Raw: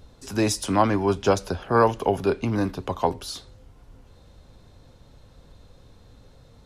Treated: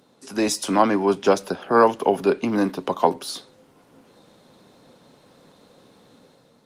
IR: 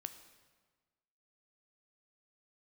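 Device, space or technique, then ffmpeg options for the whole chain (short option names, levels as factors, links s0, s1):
video call: -af "highpass=f=180:w=0.5412,highpass=f=180:w=1.3066,dynaudnorm=f=150:g=7:m=2.11" -ar 48000 -c:a libopus -b:a 32k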